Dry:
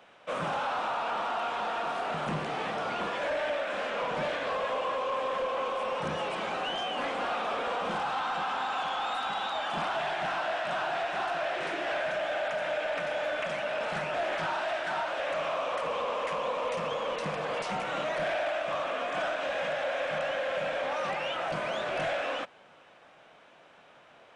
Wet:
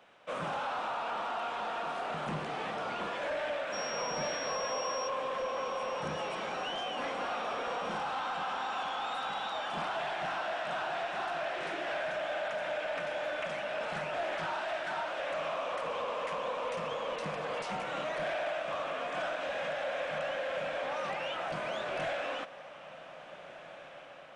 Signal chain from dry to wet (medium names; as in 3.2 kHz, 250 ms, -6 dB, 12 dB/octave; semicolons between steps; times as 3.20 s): 3.72–5.07 s: whistle 5.6 kHz -36 dBFS; echo that smears into a reverb 1678 ms, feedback 58%, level -15 dB; trim -4 dB